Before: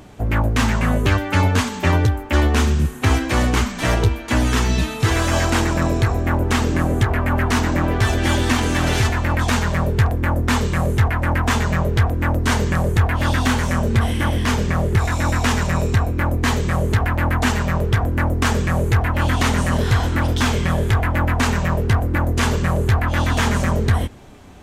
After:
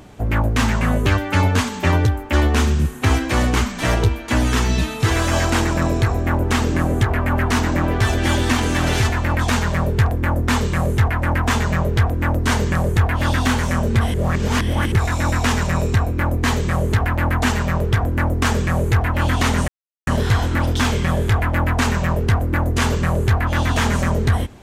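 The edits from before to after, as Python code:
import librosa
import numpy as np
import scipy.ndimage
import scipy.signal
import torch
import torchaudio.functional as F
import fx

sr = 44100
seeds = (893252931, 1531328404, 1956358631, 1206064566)

y = fx.edit(x, sr, fx.reverse_span(start_s=14.14, length_s=0.78),
    fx.insert_silence(at_s=19.68, length_s=0.39), tone=tone)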